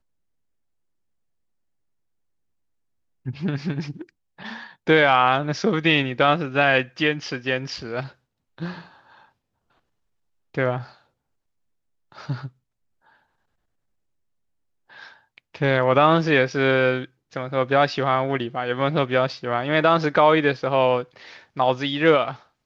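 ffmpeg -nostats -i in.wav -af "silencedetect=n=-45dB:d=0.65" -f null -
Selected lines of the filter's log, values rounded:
silence_start: 0.00
silence_end: 3.26 | silence_duration: 3.26
silence_start: 9.25
silence_end: 10.54 | silence_duration: 1.30
silence_start: 10.98
silence_end: 12.12 | silence_duration: 1.15
silence_start: 12.49
silence_end: 14.90 | silence_duration: 2.41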